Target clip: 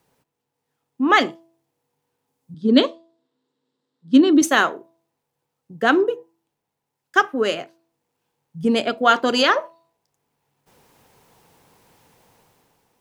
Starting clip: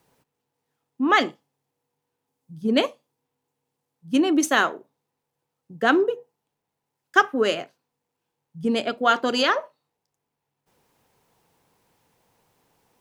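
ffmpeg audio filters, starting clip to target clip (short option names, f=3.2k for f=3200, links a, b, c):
-filter_complex "[0:a]asettb=1/sr,asplit=3[a][b][c];[a]atrim=end=2.544[d];[b]atrim=start=2.54:end=4.42,asetpts=PTS-STARTPTS,afade=t=in:d=0.004:c=qsin,afade=t=out:st=1.876:d=0.004:c=qsin,highpass=190,equalizer=f=260:t=q:w=4:g=7,equalizer=f=380:t=q:w=4:g=3,equalizer=f=780:t=q:w=4:g=-9,equalizer=f=2.4k:t=q:w=4:g=-8,equalizer=f=3.8k:t=q:w=4:g=8,equalizer=f=6.2k:t=q:w=4:g=-9,lowpass=f=7.1k:w=0.5412,lowpass=f=7.1k:w=1.3066[e];[c]atrim=start=4.416[f];[d][e]acrossfade=d=0.004:c1=hsin:c2=qsin[g];[g][f]acrossfade=d=0.004:c1=qsin:c2=hsin,bandreject=f=331.5:t=h:w=4,bandreject=f=663:t=h:w=4,bandreject=f=994.5:t=h:w=4,dynaudnorm=f=130:g=11:m=11dB,volume=-1dB"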